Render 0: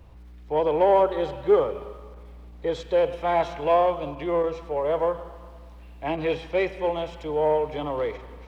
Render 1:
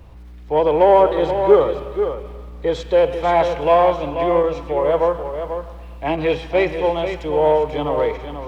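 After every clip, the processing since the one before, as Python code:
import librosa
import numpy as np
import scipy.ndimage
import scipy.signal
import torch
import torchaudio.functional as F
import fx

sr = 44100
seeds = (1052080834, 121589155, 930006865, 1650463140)

y = x + 10.0 ** (-8.5 / 20.0) * np.pad(x, (int(487 * sr / 1000.0), 0))[:len(x)]
y = F.gain(torch.from_numpy(y), 6.5).numpy()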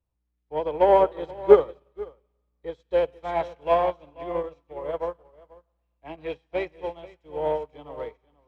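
y = fx.upward_expand(x, sr, threshold_db=-33.0, expansion=2.5)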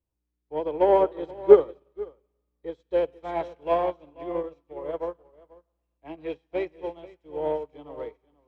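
y = fx.peak_eq(x, sr, hz=330.0, db=7.5, octaves=1.0)
y = F.gain(torch.from_numpy(y), -4.5).numpy()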